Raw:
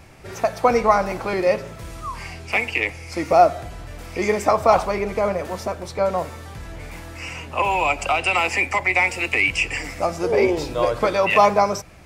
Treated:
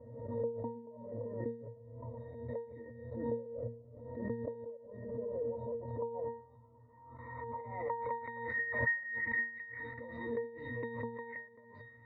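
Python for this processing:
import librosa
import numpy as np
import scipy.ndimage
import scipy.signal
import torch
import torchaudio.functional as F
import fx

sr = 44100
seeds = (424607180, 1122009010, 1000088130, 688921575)

y = fx.highpass(x, sr, hz=59.0, slope=6)
y = fx.low_shelf(y, sr, hz=370.0, db=-5.5)
y = fx.notch(y, sr, hz=4300.0, q=7.7)
y = fx.formant_shift(y, sr, semitones=-4)
y = fx.level_steps(y, sr, step_db=19)
y = fx.filter_sweep_lowpass(y, sr, from_hz=570.0, to_hz=1900.0, start_s=5.28, end_s=9.01, q=3.8)
y = fx.high_shelf(y, sr, hz=9500.0, db=-8.5)
y = fx.gate_flip(y, sr, shuts_db=-14.0, range_db=-33)
y = fx.octave_resonator(y, sr, note='A#', decay_s=0.43)
y = fx.pre_swell(y, sr, db_per_s=50.0)
y = y * 10.0 ** (11.5 / 20.0)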